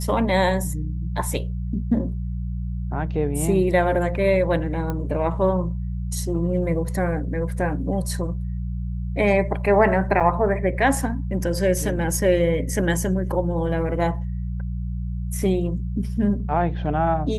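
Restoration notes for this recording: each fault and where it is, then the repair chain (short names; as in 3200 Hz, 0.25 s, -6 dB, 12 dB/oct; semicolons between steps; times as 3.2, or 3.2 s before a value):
hum 60 Hz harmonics 3 -27 dBFS
4.9 pop -15 dBFS
10.2–10.21 gap 6.1 ms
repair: de-click; de-hum 60 Hz, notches 3; interpolate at 10.2, 6.1 ms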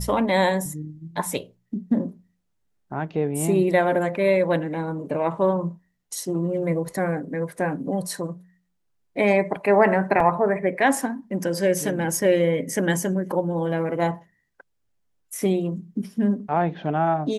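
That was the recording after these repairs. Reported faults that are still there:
none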